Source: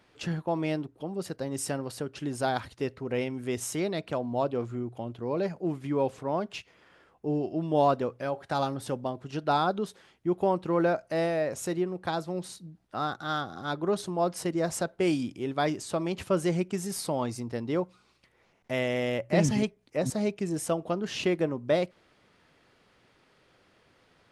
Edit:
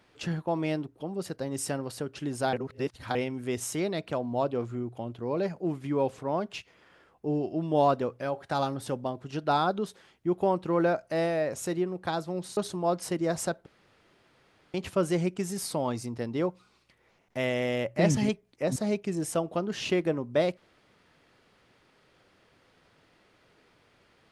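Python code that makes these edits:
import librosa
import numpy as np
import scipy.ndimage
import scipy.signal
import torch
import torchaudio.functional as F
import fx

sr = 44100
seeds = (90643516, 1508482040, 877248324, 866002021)

y = fx.edit(x, sr, fx.reverse_span(start_s=2.53, length_s=0.62),
    fx.cut(start_s=12.57, length_s=1.34),
    fx.room_tone_fill(start_s=15.0, length_s=1.08), tone=tone)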